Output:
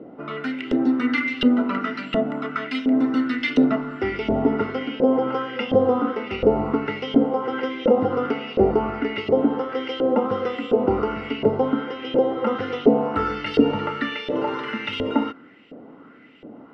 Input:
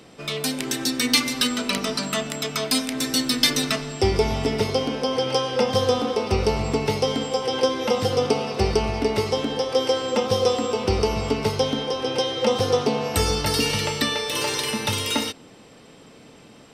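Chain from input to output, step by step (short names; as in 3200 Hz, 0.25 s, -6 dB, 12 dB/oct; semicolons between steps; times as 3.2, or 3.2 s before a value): Bessel low-pass 6200 Hz, order 2; LFO band-pass saw up 1.4 Hz 550–3100 Hz; in parallel at -2.5 dB: limiter -24.5 dBFS, peak gain reduction 10.5 dB; on the sum: tilt -4.5 dB/oct; small resonant body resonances 270/1400/2000/2800 Hz, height 14 dB, ringing for 25 ms; gain -1 dB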